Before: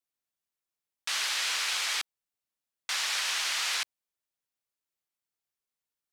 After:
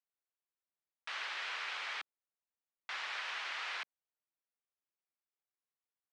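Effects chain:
band-pass filter 290–2,300 Hz
level −5 dB

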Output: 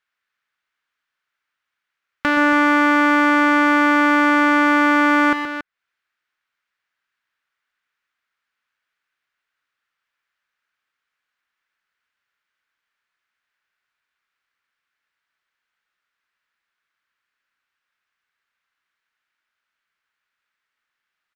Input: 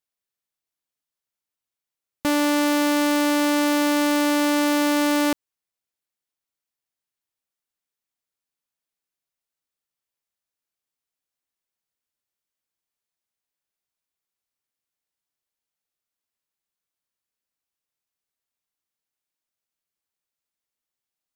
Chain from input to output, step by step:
drawn EQ curve 770 Hz 0 dB, 1,500 Hz +13 dB, 10,000 Hz −19 dB
multi-tap delay 123/279 ms −8/−10 dB
one half of a high-frequency compander encoder only

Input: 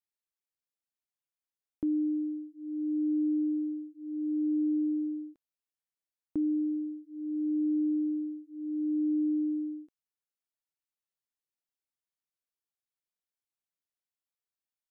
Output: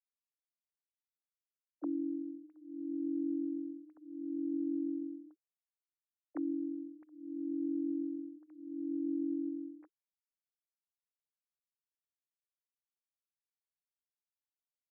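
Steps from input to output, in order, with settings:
three sine waves on the formant tracks
level −7.5 dB

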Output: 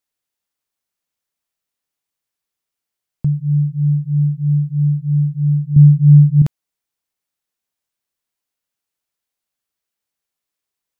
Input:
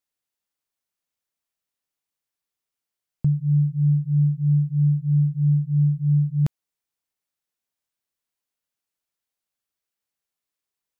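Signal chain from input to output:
0:05.76–0:06.42: low-shelf EQ 320 Hz +10.5 dB
level +3.5 dB

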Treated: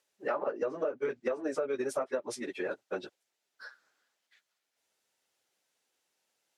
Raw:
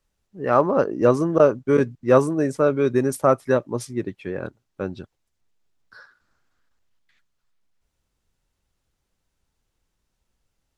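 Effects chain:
high-pass filter 510 Hz 12 dB per octave
treble cut that deepens with the level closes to 2,500 Hz, closed at −17.5 dBFS
parametric band 1,100 Hz −6 dB 0.58 octaves
time stretch by phase vocoder 0.61×
brickwall limiter −17 dBFS, peak gain reduction 6 dB
downward compressor 6 to 1, threshold −35 dBFS, peak gain reduction 13 dB
level +5.5 dB

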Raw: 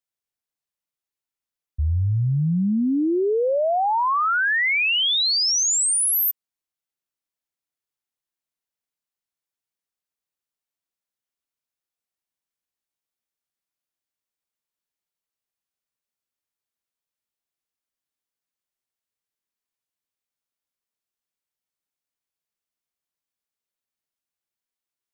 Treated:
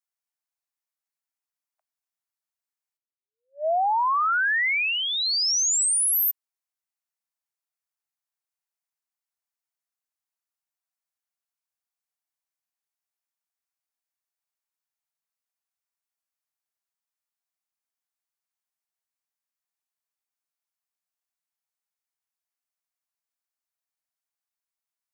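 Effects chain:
Butterworth high-pass 620 Hz 96 dB per octave
parametric band 3,300 Hz −5 dB 0.71 octaves
0:02.97–0:03.67: expander for the loud parts 2.5 to 1, over −41 dBFS
level −1.5 dB

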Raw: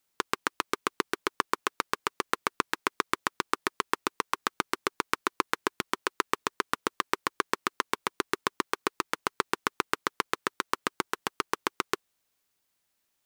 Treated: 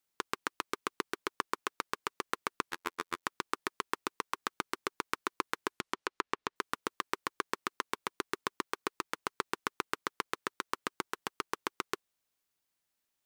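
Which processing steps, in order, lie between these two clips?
0:02.71–0:03.23: phases set to zero 86.3 Hz
0:05.71–0:06.56: treble cut that deepens with the level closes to 3,000 Hz, closed at −28.5 dBFS
level −6.5 dB

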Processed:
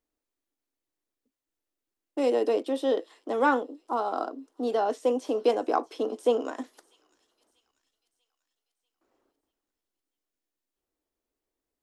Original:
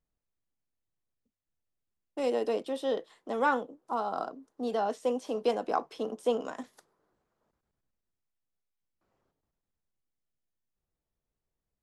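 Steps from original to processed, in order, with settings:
low shelf with overshoot 220 Hz −9 dB, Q 3
delay with a high-pass on its return 641 ms, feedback 48%, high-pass 3,600 Hz, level −18.5 dB
level +2.5 dB

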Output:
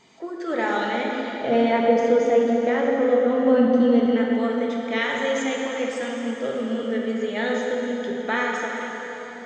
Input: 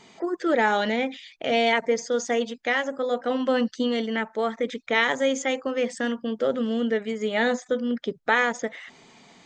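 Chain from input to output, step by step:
0:01.30–0:04.06: tilt shelving filter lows +9.5 dB, about 1,400 Hz
dense smooth reverb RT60 4.2 s, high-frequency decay 0.8×, DRR −2 dB
level −5 dB

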